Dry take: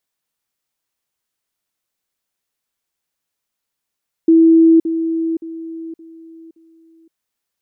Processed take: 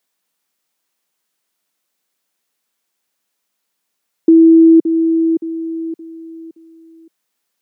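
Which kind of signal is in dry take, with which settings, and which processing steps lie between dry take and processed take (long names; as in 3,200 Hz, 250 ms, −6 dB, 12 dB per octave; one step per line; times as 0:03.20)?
level staircase 327 Hz −6 dBFS, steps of −10 dB, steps 5, 0.52 s 0.05 s
high-pass filter 160 Hz 24 dB per octave
in parallel at +1 dB: downward compressor, threshold −19 dBFS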